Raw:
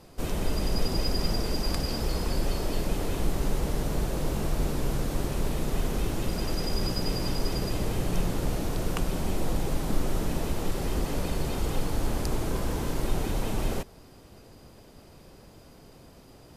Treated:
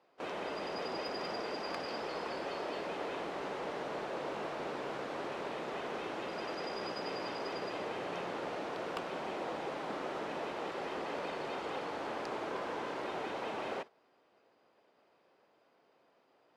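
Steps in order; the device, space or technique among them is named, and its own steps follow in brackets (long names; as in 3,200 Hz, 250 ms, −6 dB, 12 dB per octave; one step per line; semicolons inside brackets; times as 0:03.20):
walkie-talkie (band-pass filter 520–2,600 Hz; hard clipping −29.5 dBFS, distortion −27 dB; noise gate −45 dBFS, range −11 dB)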